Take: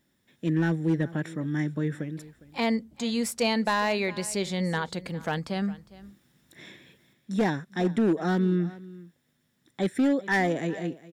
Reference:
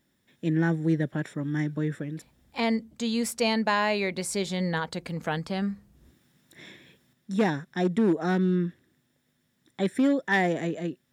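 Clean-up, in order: clip repair -17.5 dBFS; inverse comb 0.407 s -19.5 dB

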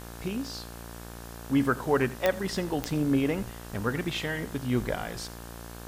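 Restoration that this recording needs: de-click; de-hum 58.1 Hz, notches 31; noise print and reduce 30 dB; inverse comb 86 ms -18.5 dB

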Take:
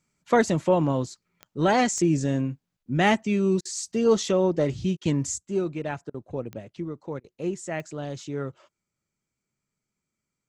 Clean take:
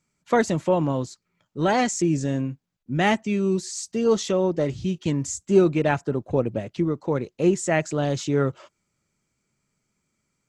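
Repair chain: de-click; interpolate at 3.61/4.97/6.1/7.2, 41 ms; gain 0 dB, from 5.38 s +9.5 dB

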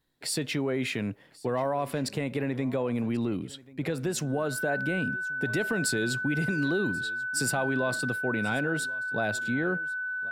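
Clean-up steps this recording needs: notch 1500 Hz, Q 30; inverse comb 1.086 s -21.5 dB

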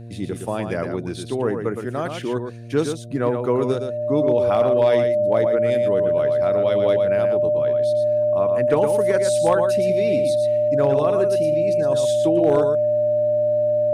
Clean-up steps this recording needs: clip repair -9 dBFS; de-hum 116.6 Hz, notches 6; notch 600 Hz, Q 30; inverse comb 0.115 s -6.5 dB

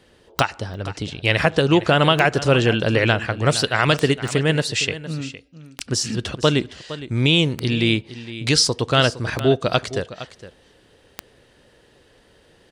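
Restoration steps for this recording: de-click; interpolate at 0.74/4.28, 1.1 ms; inverse comb 0.462 s -14.5 dB

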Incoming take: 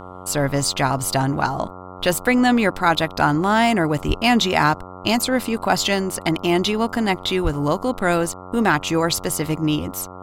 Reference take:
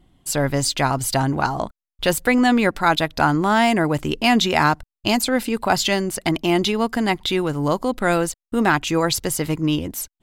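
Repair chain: de-hum 91.8 Hz, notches 15; 4.07–4.19 HPF 140 Hz 24 dB/oct; 7.43–7.55 HPF 140 Hz 24 dB/oct

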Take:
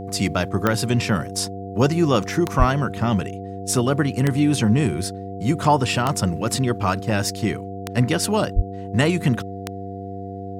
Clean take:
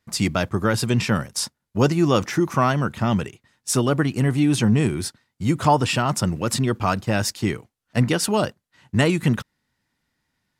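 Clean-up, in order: de-click; de-hum 97.1 Hz, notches 5; notch 700 Hz, Q 30; 2.58–2.7 HPF 140 Hz 24 dB/oct; 8.55–8.67 HPF 140 Hz 24 dB/oct

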